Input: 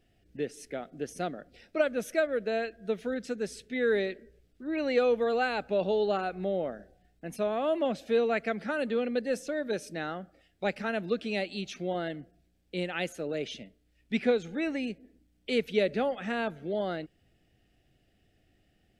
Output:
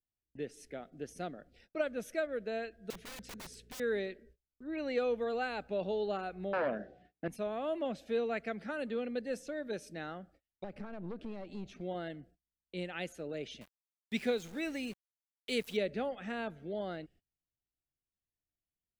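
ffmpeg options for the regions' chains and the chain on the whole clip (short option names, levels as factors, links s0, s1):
-filter_complex "[0:a]asettb=1/sr,asplit=3[s0][s1][s2];[s0]atrim=end=2.904[s3];[s1]atrim=start=2.9:end=3.8,asetpts=PTS-STARTPTS,afade=t=in:d=0.004:c=qsin,afade=t=out:st=0.896:d=0.004:c=qsin,aeval=exprs='val(0)+0.00126*(sin(2*PI*60*n/s)+sin(2*PI*2*60*n/s)/2+sin(2*PI*3*60*n/s)/3+sin(2*PI*4*60*n/s)/4+sin(2*PI*5*60*n/s)/5)':c=same,aeval=exprs='(mod(53.1*val(0)+1,2)-1)/53.1':c=same[s4];[s2]atrim=start=3.796[s5];[s3][s4]acrossfade=d=0.004:c1=hsin:c2=qsin[s6];[s6][s5]acrossfade=d=0.004:c1=qsin:c2=hsin,asettb=1/sr,asplit=3[s7][s8][s9];[s7]atrim=end=6.534[s10];[s8]atrim=start=6.53:end=7.28,asetpts=PTS-STARTPTS,afade=t=in:d=0.004:c=qsin,afade=t=out:st=0.746:d=0.004:c=qsin,aeval=exprs='0.0891*sin(PI/2*2.82*val(0)/0.0891)':c=same,highpass=160,lowpass=3300,asplit=2[s11][s12];[s12]adelay=14,volume=0.224[s13];[s11][s13]amix=inputs=2:normalize=0,atrim=end_sample=33075[s14];[s9]atrim=start=7.276[s15];[s10][s14]acrossfade=d=0.004:c1=hsin:c2=qsin[s16];[s16][s15]acrossfade=d=0.004:c1=qsin:c2=hsin,asettb=1/sr,asplit=3[s17][s18][s19];[s17]atrim=end=10.644[s20];[s18]atrim=start=10.64:end=11.81,asetpts=PTS-STARTPTS,afade=t=in:d=0.004:c=qsin,afade=t=out:st=1.166:d=0.004:c=qsin,acompressor=threshold=0.0178:ratio=5:attack=3.2:release=140:knee=1:detection=peak,tiltshelf=f=1500:g=8,aeval=exprs='(tanh(35.5*val(0)+0.45)-tanh(0.45))/35.5':c=same[s21];[s19]atrim=start=11.806[s22];[s20][s21]acrossfade=d=0.004:c1=hsin:c2=qsin[s23];[s23][s22]acrossfade=d=0.004:c1=qsin:c2=hsin,asettb=1/sr,asplit=3[s24][s25][s26];[s24]atrim=end=13.614[s27];[s25]atrim=start=13.61:end=15.77,asetpts=PTS-STARTPTS,afade=t=in:d=0.004:c=qsin,afade=t=out:st=2.156:d=0.004:c=qsin,aemphasis=mode=production:type=75kf,aeval=exprs='val(0)*gte(abs(val(0)),0.00708)':c=same[s28];[s26]atrim=start=15.766[s29];[s27][s28]acrossfade=d=0.004:c1=hsin:c2=qsin[s30];[s30][s29]acrossfade=d=0.004:c1=qsin:c2=hsin,agate=range=0.0447:threshold=0.00178:ratio=16:detection=peak,lowshelf=f=96:g=7,volume=0.422"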